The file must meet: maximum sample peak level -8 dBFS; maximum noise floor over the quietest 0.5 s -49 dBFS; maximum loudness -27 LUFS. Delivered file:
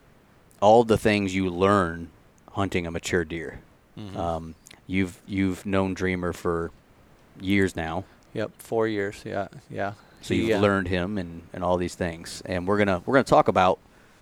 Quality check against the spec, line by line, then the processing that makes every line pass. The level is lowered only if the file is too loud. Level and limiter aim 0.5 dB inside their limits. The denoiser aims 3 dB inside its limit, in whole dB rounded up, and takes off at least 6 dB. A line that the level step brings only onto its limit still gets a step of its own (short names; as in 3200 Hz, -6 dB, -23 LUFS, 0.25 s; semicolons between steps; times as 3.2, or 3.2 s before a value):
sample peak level -5.5 dBFS: fail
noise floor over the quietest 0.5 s -56 dBFS: OK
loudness -25.0 LUFS: fail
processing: gain -2.5 dB; limiter -8.5 dBFS